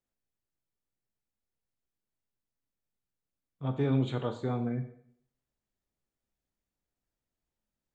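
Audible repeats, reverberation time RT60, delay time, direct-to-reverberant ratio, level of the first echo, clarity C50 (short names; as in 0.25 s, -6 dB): none, 0.65 s, none, 7.5 dB, none, 11.0 dB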